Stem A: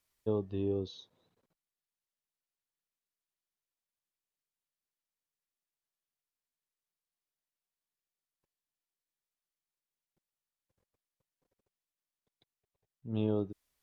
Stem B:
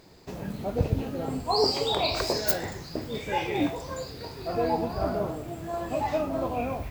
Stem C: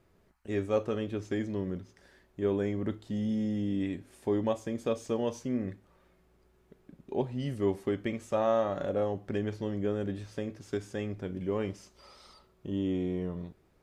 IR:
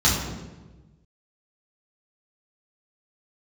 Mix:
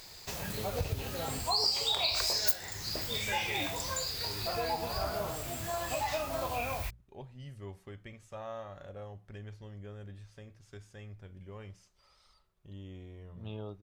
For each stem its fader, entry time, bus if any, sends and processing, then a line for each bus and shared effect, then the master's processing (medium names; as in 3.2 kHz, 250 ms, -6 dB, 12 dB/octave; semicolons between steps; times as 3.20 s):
-1.5 dB, 0.30 s, no send, none
+2.5 dB, 0.00 s, no send, treble shelf 2.7 kHz +11 dB
-10.0 dB, 0.00 s, no send, bass shelf 150 Hz +11.5 dB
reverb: none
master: peaking EQ 280 Hz -14 dB 1.9 oct; hum notches 60/120/180 Hz; compression 2.5:1, threshold -32 dBFS, peak gain reduction 17 dB